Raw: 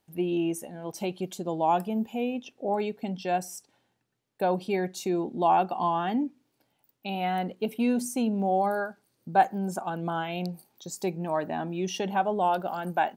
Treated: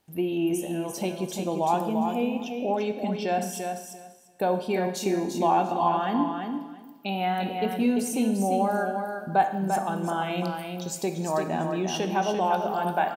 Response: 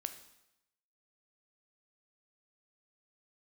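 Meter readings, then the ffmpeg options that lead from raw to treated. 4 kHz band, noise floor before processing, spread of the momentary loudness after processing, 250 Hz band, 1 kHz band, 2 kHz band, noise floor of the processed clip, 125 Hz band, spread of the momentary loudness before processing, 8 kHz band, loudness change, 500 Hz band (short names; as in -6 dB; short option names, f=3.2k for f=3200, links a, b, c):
+3.5 dB, -76 dBFS, 8 LU, +2.5 dB, +1.5 dB, +2.0 dB, -45 dBFS, +2.5 dB, 10 LU, +4.5 dB, +2.0 dB, +2.5 dB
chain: -filter_complex "[0:a]asplit=2[a][b];[b]acompressor=threshold=-32dB:ratio=6,volume=3dB[c];[a][c]amix=inputs=2:normalize=0,aecho=1:1:344|688|1032:0.501|0.0802|0.0128[d];[1:a]atrim=start_sample=2205,asetrate=34398,aresample=44100[e];[d][e]afir=irnorm=-1:irlink=0,volume=-2.5dB"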